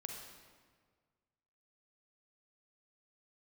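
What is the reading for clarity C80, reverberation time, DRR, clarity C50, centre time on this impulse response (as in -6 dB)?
4.5 dB, 1.7 s, 1.5 dB, 2.5 dB, 60 ms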